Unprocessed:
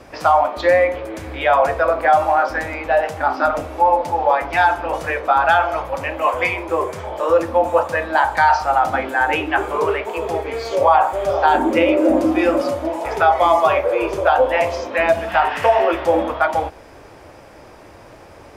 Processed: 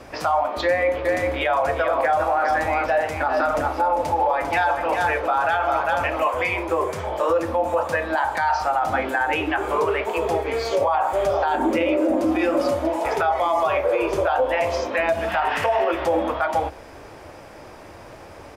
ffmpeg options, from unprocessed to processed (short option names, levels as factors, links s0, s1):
-filter_complex "[0:a]asplit=3[s0][s1][s2];[s0]afade=t=out:st=1.04:d=0.02[s3];[s1]aecho=1:1:398:0.447,afade=t=in:st=1.04:d=0.02,afade=t=out:st=6.19:d=0.02[s4];[s2]afade=t=in:st=6.19:d=0.02[s5];[s3][s4][s5]amix=inputs=3:normalize=0,bandreject=f=60:t=h:w=6,bandreject=f=120:t=h:w=6,bandreject=f=180:t=h:w=6,bandreject=f=240:t=h:w=6,bandreject=f=300:t=h:w=6,bandreject=f=360:t=h:w=6,bandreject=f=420:t=h:w=6,bandreject=f=480:t=h:w=6,bandreject=f=540:t=h:w=6,alimiter=limit=0.224:level=0:latency=1:release=130,volume=1.12"